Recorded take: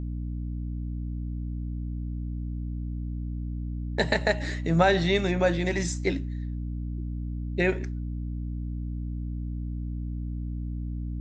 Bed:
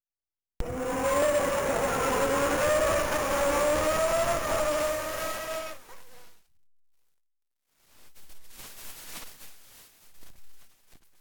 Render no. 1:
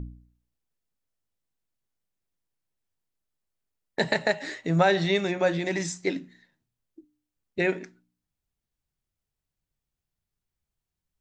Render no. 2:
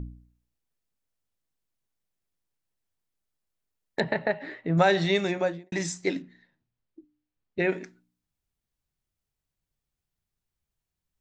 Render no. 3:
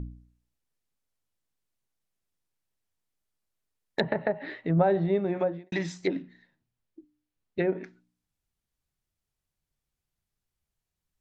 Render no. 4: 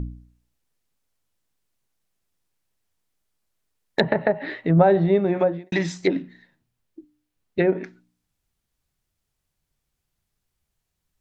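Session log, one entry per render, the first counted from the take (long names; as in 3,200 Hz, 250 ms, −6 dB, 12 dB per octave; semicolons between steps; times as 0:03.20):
hum removal 60 Hz, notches 5
0:04.00–0:04.78: high-frequency loss of the air 440 metres; 0:05.31–0:05.72: fade out and dull; 0:06.22–0:07.72: high-frequency loss of the air 160 metres
treble cut that deepens with the level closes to 770 Hz, closed at −21.5 dBFS; dynamic equaliser 3,700 Hz, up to +6 dB, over −54 dBFS, Q 1.6
level +7 dB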